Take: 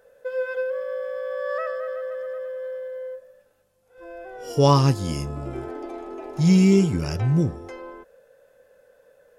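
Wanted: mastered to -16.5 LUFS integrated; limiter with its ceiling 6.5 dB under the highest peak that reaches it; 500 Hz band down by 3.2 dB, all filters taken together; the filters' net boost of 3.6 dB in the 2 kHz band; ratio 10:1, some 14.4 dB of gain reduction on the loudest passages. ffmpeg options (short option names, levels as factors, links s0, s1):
-af "equalizer=f=500:t=o:g=-4,equalizer=f=2000:t=o:g=5,acompressor=threshold=0.0398:ratio=10,volume=8.91,alimiter=limit=0.447:level=0:latency=1"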